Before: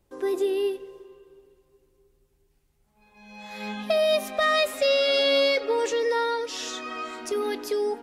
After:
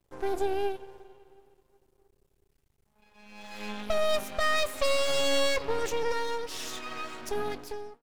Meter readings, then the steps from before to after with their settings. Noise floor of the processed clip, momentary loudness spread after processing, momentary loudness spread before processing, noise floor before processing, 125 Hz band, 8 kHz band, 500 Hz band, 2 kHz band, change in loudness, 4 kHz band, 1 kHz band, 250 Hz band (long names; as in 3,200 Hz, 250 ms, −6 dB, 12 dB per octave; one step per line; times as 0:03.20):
−71 dBFS, 14 LU, 14 LU, −68 dBFS, can't be measured, 0.0 dB, −6.5 dB, −4.5 dB, −5.5 dB, −5.5 dB, −3.0 dB, −5.5 dB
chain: fade-out on the ending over 0.64 s
half-wave rectification